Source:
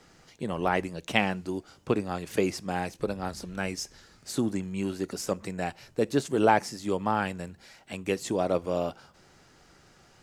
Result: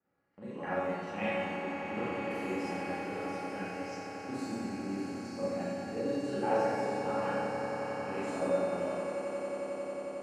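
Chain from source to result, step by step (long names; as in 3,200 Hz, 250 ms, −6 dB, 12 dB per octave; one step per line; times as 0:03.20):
reversed piece by piece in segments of 126 ms
parametric band 3,400 Hz −11 dB 0.25 octaves
noise gate −54 dBFS, range −10 dB
low-pass that shuts in the quiet parts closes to 2,100 Hz, open at −25.5 dBFS
high-pass filter 100 Hz
high-shelf EQ 4,700 Hz −11 dB
tuned comb filter 280 Hz, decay 0.62 s, mix 90%
on a send: echo that builds up and dies away 90 ms, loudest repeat 8, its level −15 dB
on the sum: four-comb reverb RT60 1.3 s, combs from 30 ms, DRR −9 dB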